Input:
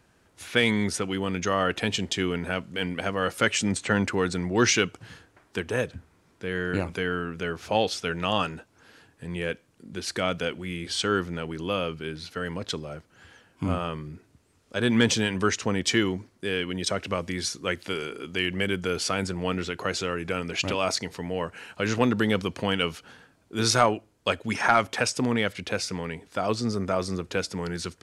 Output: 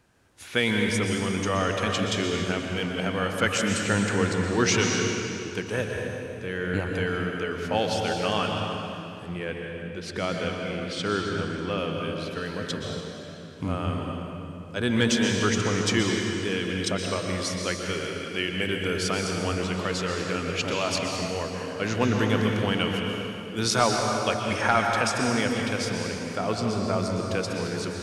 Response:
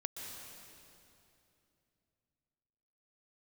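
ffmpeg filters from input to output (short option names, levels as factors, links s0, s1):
-filter_complex "[0:a]asettb=1/sr,asplit=3[s0][s1][s2];[s0]atrim=end=9.264[s3];[s1]atrim=start=9.26:end=11.78,asetpts=PTS-STARTPTS,afade=t=in:d=0.004:c=qsin,afade=t=out:st=2.516:d=0.004:c=qsin,lowpass=f=3300:p=1[s4];[s2]atrim=start=11.776[s5];[s3][s4]acrossfade=d=0.004:c1=hsin:c2=qsin[s6];[s6][s5]acrossfade=d=0.004:c1=qsin:c2=hsin[s7];[1:a]atrim=start_sample=2205[s8];[s7][s8]afir=irnorm=-1:irlink=0,volume=1.12"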